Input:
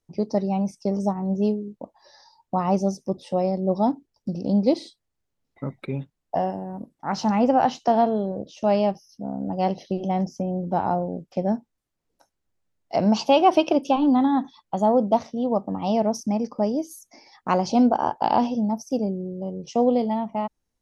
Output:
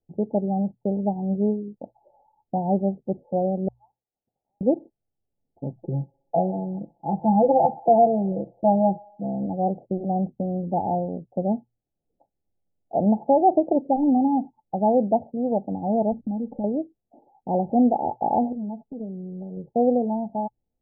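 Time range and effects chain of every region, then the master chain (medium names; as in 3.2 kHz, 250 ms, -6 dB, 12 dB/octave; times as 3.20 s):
3.68–4.61 s: steep high-pass 1.3 kHz 48 dB/octave + decimation joined by straight lines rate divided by 6×
5.75–9.46 s: comb 6 ms, depth 95% + feedback echo behind a high-pass 63 ms, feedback 61%, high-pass 1.5 kHz, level -9 dB
16.12–16.64 s: tilt EQ -3 dB/octave + compression 3:1, threshold -30 dBFS + comb 3.8 ms, depth 44%
18.52–19.57 s: compression 16:1, threshold -32 dBFS + comb 4.6 ms, depth 73% + loudspeaker Doppler distortion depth 0.21 ms
whole clip: Chebyshev low-pass 860 Hz, order 8; hum notches 60/120 Hz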